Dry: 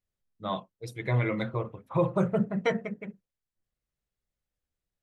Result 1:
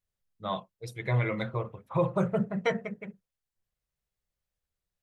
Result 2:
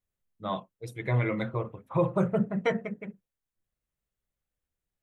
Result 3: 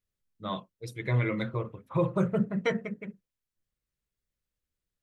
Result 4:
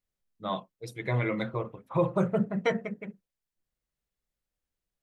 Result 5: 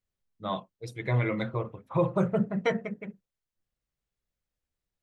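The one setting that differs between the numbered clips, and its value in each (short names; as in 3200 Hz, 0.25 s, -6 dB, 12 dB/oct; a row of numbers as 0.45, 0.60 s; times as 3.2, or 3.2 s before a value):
bell, frequency: 280, 4800, 750, 94, 13000 Hz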